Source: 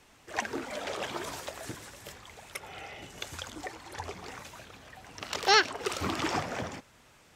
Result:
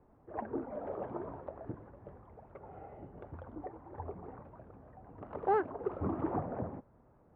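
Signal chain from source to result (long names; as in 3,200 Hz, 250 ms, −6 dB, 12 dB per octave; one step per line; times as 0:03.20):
Bessel low-pass filter 680 Hz, order 4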